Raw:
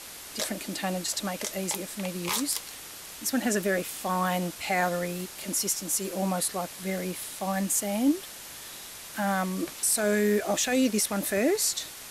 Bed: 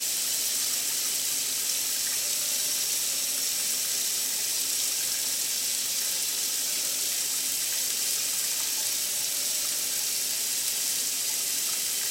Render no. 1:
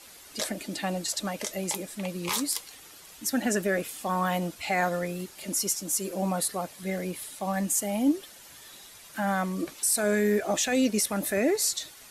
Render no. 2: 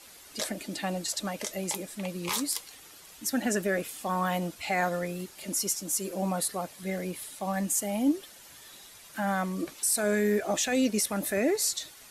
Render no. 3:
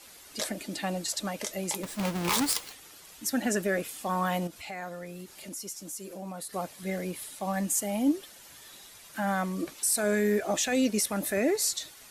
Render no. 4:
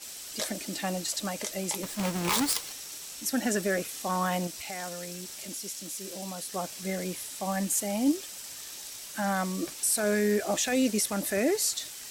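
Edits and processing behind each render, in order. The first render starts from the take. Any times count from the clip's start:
denoiser 9 dB, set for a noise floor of -43 dBFS
gain -1.5 dB
1.83–2.73 half-waves squared off; 4.47–6.53 compressor 2:1, threshold -43 dBFS
add bed -14.5 dB

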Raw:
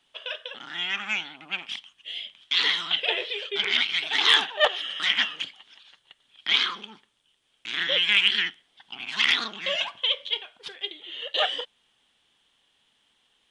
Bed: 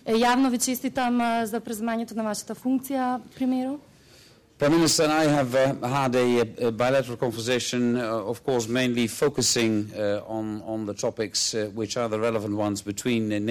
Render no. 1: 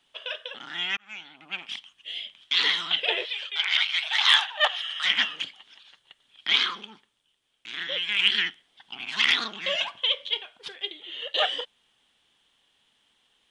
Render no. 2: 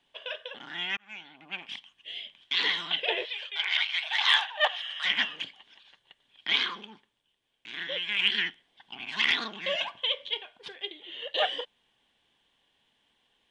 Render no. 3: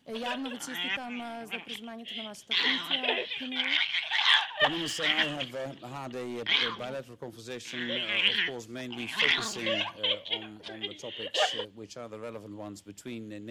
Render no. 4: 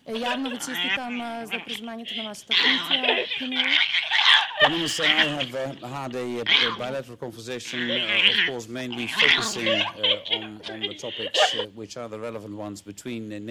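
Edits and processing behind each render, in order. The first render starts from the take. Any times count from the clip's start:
0.97–2.11 fade in equal-power; 3.25–5.05 inverse Chebyshev high-pass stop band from 350 Hz; 6.68–8.19 fade out quadratic, to -6.5 dB
high shelf 3800 Hz -10.5 dB; notch 1300 Hz, Q 6.3
add bed -15.5 dB
gain +7 dB; limiter -3 dBFS, peak gain reduction 1.5 dB

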